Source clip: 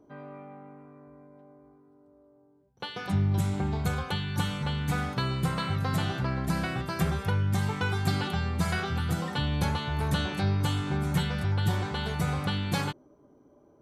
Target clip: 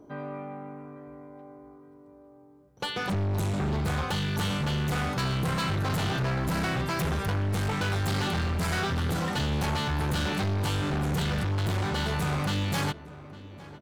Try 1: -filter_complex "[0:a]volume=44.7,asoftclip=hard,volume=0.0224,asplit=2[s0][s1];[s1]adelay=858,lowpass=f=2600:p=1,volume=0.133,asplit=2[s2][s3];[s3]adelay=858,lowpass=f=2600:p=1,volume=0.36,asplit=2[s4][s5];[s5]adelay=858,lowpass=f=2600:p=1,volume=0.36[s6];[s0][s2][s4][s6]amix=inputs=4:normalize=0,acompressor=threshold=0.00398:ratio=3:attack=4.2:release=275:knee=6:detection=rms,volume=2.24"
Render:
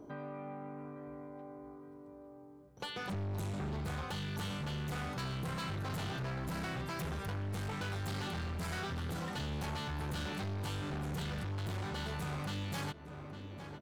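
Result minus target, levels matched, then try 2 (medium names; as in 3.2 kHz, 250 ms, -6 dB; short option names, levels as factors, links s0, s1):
compression: peak gain reduction +11 dB
-filter_complex "[0:a]volume=44.7,asoftclip=hard,volume=0.0224,asplit=2[s0][s1];[s1]adelay=858,lowpass=f=2600:p=1,volume=0.133,asplit=2[s2][s3];[s3]adelay=858,lowpass=f=2600:p=1,volume=0.36,asplit=2[s4][s5];[s5]adelay=858,lowpass=f=2600:p=1,volume=0.36[s6];[s0][s2][s4][s6]amix=inputs=4:normalize=0,volume=2.24"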